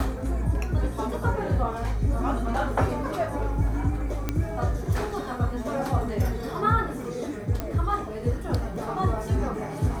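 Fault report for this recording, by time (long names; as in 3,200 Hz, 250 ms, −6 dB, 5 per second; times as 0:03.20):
0:04.29: click −12 dBFS
0:07.60: click −15 dBFS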